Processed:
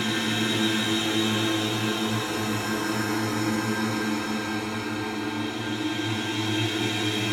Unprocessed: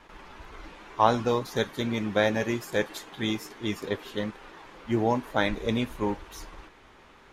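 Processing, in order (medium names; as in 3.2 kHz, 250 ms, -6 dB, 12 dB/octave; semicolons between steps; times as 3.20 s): comb filter that takes the minimum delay 0.73 ms; comb of notches 580 Hz; level-controlled noise filter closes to 2.2 kHz, open at -26 dBFS; tilt EQ +2 dB/octave; echo whose repeats swap between lows and highs 213 ms, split 2.1 kHz, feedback 83%, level -4.5 dB; FDN reverb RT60 0.86 s, low-frequency decay 1×, high-frequency decay 0.4×, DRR -3.5 dB; Paulstretch 15×, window 0.25 s, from 3.23 s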